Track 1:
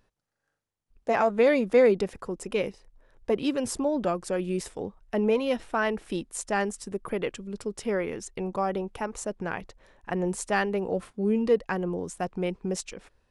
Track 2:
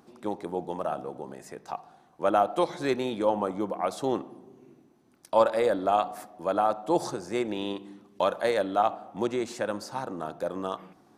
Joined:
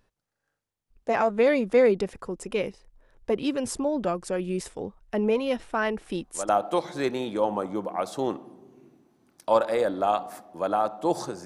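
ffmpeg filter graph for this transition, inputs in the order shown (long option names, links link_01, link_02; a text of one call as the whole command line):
ffmpeg -i cue0.wav -i cue1.wav -filter_complex "[1:a]asplit=2[link_01][link_02];[0:a]apad=whole_dur=11.45,atrim=end=11.45,atrim=end=6.492[link_03];[link_02]atrim=start=2.338:end=7.3[link_04];[link_01]atrim=start=1.9:end=2.34,asetpts=PTS-STARTPTS,volume=-8.5dB,afade=type=in:duration=0.004:curve=hsin,afade=type=out:start_time=0.436:duration=0.004:curve=hsin,adelay=6050[link_05];[link_03][link_04]acrossfade=duration=0.004:curve1=hsin:curve2=hsin[link_06];[link_06][link_05]amix=inputs=2:normalize=0" out.wav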